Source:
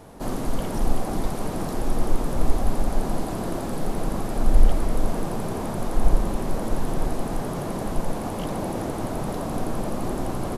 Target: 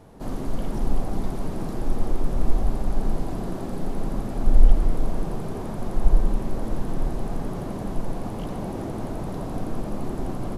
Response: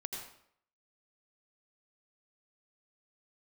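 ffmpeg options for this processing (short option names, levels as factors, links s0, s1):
-filter_complex "[0:a]asplit=2[s0][s1];[1:a]atrim=start_sample=2205,lowpass=7400,lowshelf=f=440:g=12[s2];[s1][s2]afir=irnorm=-1:irlink=0,volume=0.562[s3];[s0][s3]amix=inputs=2:normalize=0,volume=0.355"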